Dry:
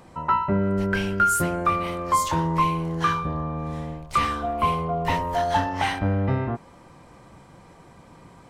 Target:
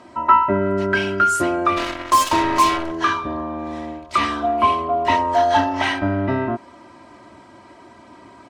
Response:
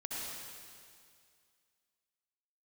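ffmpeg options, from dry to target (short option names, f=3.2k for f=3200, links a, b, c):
-filter_complex "[0:a]highpass=130,lowpass=6.4k,asplit=3[a][b][c];[a]afade=t=out:st=1.76:d=0.02[d];[b]acrusher=bits=3:mix=0:aa=0.5,afade=t=in:st=1.76:d=0.02,afade=t=out:st=2.9:d=0.02[e];[c]afade=t=in:st=2.9:d=0.02[f];[d][e][f]amix=inputs=3:normalize=0,aecho=1:1:3.1:0.87,volume=3.5dB"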